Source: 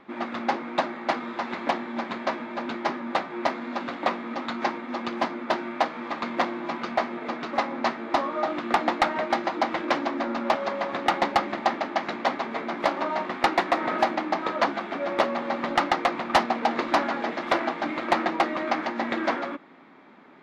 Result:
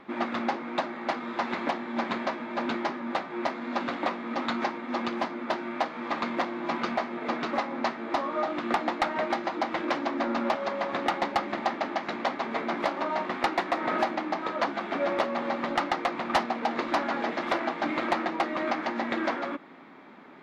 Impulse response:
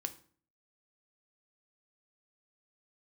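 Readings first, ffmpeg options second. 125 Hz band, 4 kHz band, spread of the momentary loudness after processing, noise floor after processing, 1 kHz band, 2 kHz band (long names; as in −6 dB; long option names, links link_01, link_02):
−2.0 dB, −3.5 dB, 4 LU, −40 dBFS, −3.5 dB, −2.5 dB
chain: -af "alimiter=limit=-18.5dB:level=0:latency=1:release=373,volume=2dB"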